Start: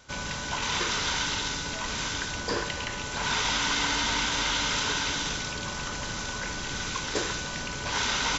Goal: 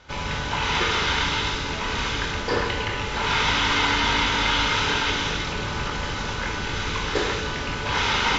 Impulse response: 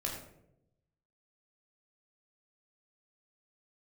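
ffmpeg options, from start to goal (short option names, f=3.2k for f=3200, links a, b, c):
-filter_complex "[0:a]lowpass=2.7k,asplit=2[a][b];[1:a]atrim=start_sample=2205,asetrate=30870,aresample=44100,highshelf=f=2.2k:g=11.5[c];[b][c]afir=irnorm=-1:irlink=0,volume=-3dB[d];[a][d]amix=inputs=2:normalize=0"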